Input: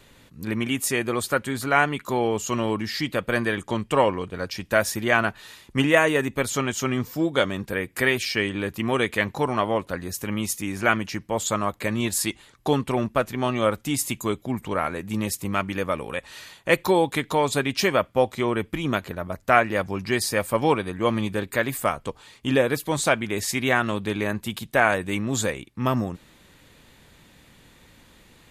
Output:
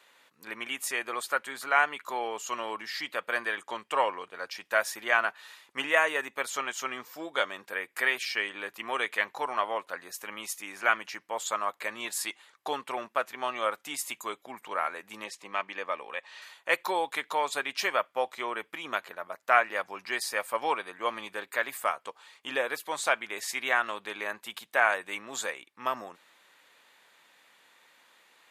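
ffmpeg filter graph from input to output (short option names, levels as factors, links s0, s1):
-filter_complex "[0:a]asettb=1/sr,asplit=3[s0][s1][s2];[s0]atrim=end=15.244[s3];[s1]atrim=start=15.24:end=16.42,asetpts=PTS-STARTPTS,afade=t=in:d=0.004:c=qsin,afade=t=out:st=1.176:d=0.004:c=qsin,highpass=130,lowpass=5600,bandreject=f=1400:w=7.9[s4];[s2]atrim=start=16.416[s5];[s3][s4]acrossfade=d=0.004:c1=hsin:c2=qsin[s6];[s6][s5]acrossfade=d=0.004:c1=qsin:c2=hsin,highpass=890,highshelf=f=2500:g=-8.5"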